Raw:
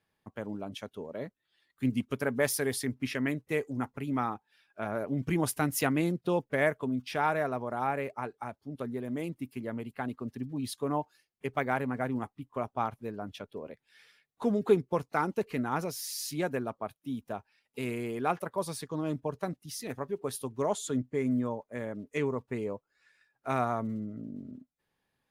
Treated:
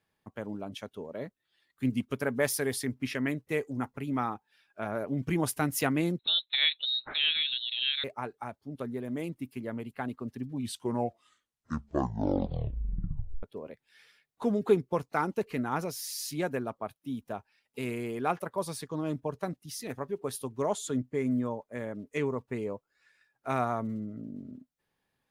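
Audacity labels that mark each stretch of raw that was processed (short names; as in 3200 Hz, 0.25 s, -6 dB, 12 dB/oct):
6.190000	8.040000	inverted band carrier 4000 Hz
10.450000	10.450000	tape stop 2.98 s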